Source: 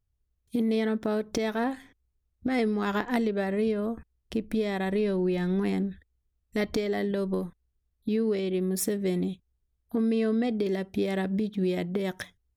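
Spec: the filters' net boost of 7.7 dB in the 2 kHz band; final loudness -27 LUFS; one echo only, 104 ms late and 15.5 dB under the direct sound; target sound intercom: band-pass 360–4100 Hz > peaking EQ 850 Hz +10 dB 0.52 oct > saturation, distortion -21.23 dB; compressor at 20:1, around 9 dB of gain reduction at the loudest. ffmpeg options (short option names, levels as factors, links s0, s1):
-af "equalizer=f=2000:t=o:g=8.5,acompressor=threshold=0.0316:ratio=20,highpass=360,lowpass=4100,equalizer=f=850:t=o:w=0.52:g=10,aecho=1:1:104:0.168,asoftclip=threshold=0.0631,volume=3.35"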